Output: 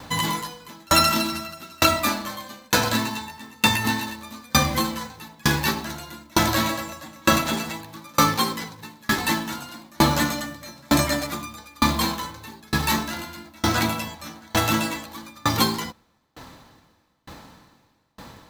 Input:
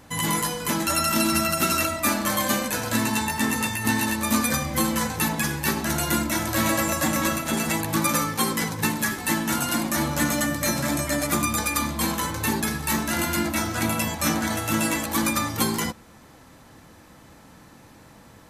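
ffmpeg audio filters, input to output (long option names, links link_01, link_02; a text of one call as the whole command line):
ffmpeg -i in.wav -af "equalizer=frequency=1000:width_type=o:width=0.67:gain=4,equalizer=frequency=4000:width_type=o:width=0.67:gain=7,equalizer=frequency=10000:width_type=o:width=0.67:gain=-8,acontrast=39,acrusher=bits=4:mode=log:mix=0:aa=0.000001,aeval=exprs='val(0)*pow(10,-35*if(lt(mod(1.1*n/s,1),2*abs(1.1)/1000),1-mod(1.1*n/s,1)/(2*abs(1.1)/1000),(mod(1.1*n/s,1)-2*abs(1.1)/1000)/(1-2*abs(1.1)/1000))/20)':channel_layout=same,volume=3.5dB" out.wav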